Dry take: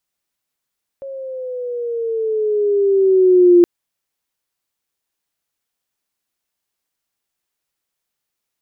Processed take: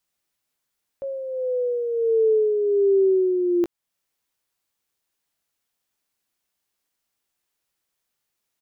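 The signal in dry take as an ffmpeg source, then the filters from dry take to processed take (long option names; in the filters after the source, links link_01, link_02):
-f lavfi -i "aevalsrc='pow(10,(-5+22*(t/2.62-1))/20)*sin(2*PI*549*2.62/(-8*log(2)/12)*(exp(-8*log(2)/12*t/2.62)-1))':duration=2.62:sample_rate=44100"
-filter_complex "[0:a]alimiter=limit=-16dB:level=0:latency=1:release=348,asplit=2[link_01][link_02];[link_02]adelay=18,volume=-11dB[link_03];[link_01][link_03]amix=inputs=2:normalize=0"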